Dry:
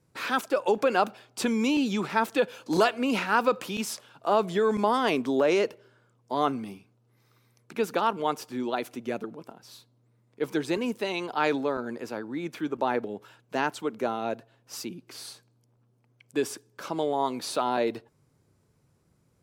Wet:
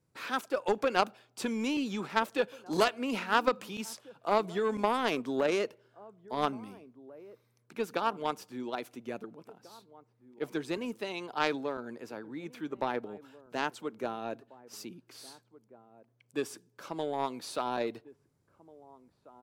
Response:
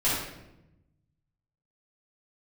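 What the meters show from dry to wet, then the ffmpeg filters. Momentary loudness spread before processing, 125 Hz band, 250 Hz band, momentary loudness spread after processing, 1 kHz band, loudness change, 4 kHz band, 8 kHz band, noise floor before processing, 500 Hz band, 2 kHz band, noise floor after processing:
14 LU, −6.0 dB, −6.5 dB, 20 LU, −5.0 dB, −5.5 dB, −4.0 dB, −6.5 dB, −67 dBFS, −5.5 dB, −4.5 dB, −72 dBFS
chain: -filter_complex "[0:a]asplit=2[link_01][link_02];[link_02]adelay=1691,volume=-18dB,highshelf=frequency=4000:gain=-38[link_03];[link_01][link_03]amix=inputs=2:normalize=0,aeval=exprs='0.335*(cos(1*acos(clip(val(0)/0.335,-1,1)))-cos(1*PI/2))+0.0668*(cos(3*acos(clip(val(0)/0.335,-1,1)))-cos(3*PI/2))':channel_layout=same"

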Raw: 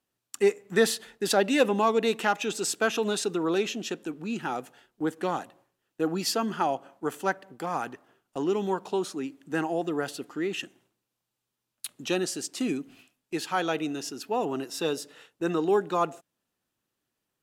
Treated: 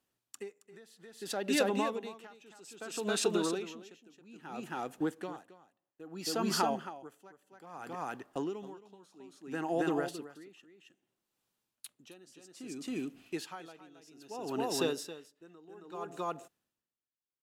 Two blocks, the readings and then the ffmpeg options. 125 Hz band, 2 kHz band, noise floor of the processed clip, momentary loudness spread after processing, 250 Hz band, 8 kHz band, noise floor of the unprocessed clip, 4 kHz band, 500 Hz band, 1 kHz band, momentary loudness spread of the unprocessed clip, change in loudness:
−7.5 dB, −10.5 dB, below −85 dBFS, 23 LU, −7.5 dB, −7.5 dB, −84 dBFS, −7.0 dB, −9.5 dB, −9.0 dB, 11 LU, −7.5 dB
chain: -af "acompressor=threshold=-26dB:ratio=6,aecho=1:1:271:0.631,aeval=exprs='val(0)*pow(10,-26*(0.5-0.5*cos(2*PI*0.61*n/s))/20)':channel_layout=same"

